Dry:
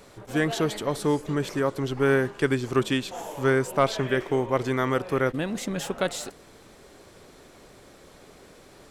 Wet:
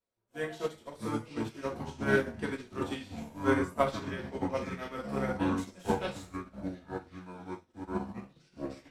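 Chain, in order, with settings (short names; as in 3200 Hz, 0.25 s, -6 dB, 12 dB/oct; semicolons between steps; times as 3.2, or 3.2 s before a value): echoes that change speed 0.509 s, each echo -6 st, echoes 2; reverb, pre-delay 3 ms, DRR -3 dB; upward expander 2.5:1, over -38 dBFS; gain -8 dB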